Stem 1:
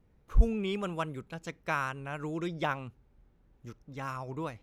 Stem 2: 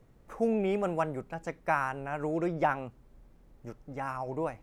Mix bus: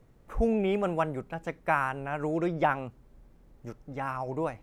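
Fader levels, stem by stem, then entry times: -10.0 dB, +0.5 dB; 0.00 s, 0.00 s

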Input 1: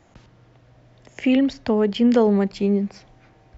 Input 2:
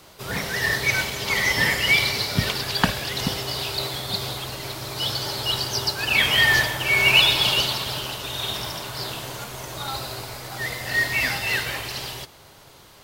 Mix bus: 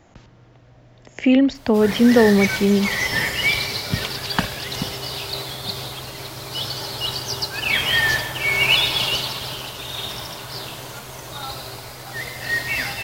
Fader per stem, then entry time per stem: +3.0 dB, -1.0 dB; 0.00 s, 1.55 s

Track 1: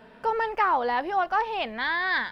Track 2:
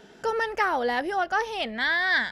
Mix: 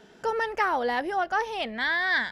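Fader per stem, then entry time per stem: -13.5 dB, -3.0 dB; 0.00 s, 0.00 s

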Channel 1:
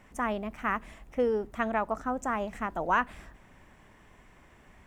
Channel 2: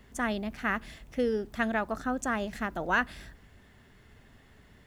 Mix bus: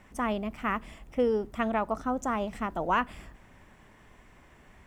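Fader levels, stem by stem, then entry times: +0.5 dB, -10.5 dB; 0.00 s, 0.00 s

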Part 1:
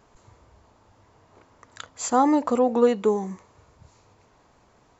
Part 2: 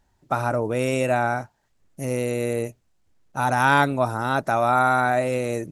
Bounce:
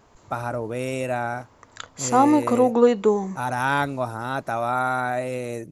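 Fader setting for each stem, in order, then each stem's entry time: +2.5 dB, -4.5 dB; 0.00 s, 0.00 s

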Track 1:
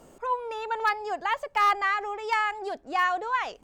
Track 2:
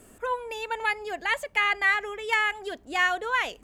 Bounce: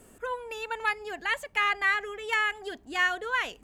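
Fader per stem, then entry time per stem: -11.5 dB, -2.5 dB; 0.00 s, 0.00 s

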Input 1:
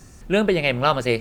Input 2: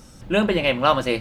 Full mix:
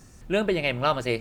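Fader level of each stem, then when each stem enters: -5.0 dB, -17.0 dB; 0.00 s, 0.00 s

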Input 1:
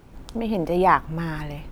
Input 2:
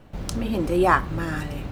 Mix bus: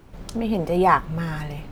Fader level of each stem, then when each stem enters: -0.5 dB, -7.0 dB; 0.00 s, 0.00 s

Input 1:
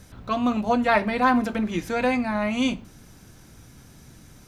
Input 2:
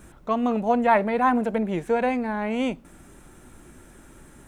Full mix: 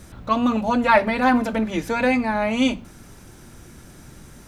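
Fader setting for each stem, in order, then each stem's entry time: +2.0 dB, +0.5 dB; 0.00 s, 0.00 s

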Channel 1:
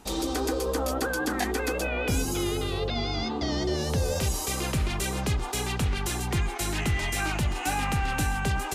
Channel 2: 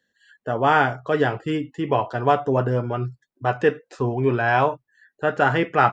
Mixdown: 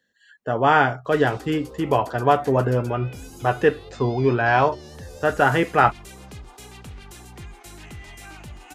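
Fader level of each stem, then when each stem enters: -13.0 dB, +1.0 dB; 1.05 s, 0.00 s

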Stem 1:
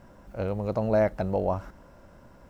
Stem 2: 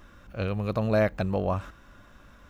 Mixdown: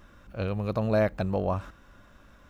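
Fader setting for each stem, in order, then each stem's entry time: -13.5 dB, -2.5 dB; 0.00 s, 0.00 s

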